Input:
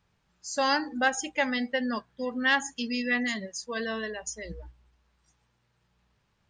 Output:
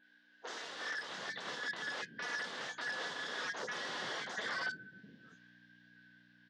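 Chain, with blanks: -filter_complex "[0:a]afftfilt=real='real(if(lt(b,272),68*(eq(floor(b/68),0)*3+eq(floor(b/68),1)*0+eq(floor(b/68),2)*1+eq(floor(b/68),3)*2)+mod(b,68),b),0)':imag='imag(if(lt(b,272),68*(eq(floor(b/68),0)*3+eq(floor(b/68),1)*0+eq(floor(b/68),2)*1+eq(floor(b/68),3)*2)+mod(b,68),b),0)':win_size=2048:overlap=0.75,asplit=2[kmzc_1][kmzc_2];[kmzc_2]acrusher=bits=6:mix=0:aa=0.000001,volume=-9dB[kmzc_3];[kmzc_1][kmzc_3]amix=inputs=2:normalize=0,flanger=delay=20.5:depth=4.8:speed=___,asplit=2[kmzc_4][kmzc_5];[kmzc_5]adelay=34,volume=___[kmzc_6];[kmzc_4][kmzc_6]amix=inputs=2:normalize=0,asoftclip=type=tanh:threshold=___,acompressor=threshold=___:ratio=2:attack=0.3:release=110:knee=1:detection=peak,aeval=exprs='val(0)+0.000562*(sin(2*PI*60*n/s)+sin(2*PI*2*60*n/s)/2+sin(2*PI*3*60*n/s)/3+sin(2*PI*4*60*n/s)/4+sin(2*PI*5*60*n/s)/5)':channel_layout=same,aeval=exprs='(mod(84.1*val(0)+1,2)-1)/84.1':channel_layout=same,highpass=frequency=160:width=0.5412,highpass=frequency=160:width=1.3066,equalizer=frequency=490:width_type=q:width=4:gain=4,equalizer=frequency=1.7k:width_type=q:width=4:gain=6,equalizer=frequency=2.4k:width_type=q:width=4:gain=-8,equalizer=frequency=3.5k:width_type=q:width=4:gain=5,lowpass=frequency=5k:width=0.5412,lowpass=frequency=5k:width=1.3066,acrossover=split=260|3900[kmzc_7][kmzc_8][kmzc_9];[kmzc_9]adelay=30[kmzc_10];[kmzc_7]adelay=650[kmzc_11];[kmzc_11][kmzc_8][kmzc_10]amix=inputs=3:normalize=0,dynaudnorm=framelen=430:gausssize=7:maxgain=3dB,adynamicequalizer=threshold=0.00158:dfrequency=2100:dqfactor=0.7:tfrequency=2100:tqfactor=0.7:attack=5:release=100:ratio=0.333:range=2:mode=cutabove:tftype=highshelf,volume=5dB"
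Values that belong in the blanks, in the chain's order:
0.68, -13.5dB, -26.5dB, -37dB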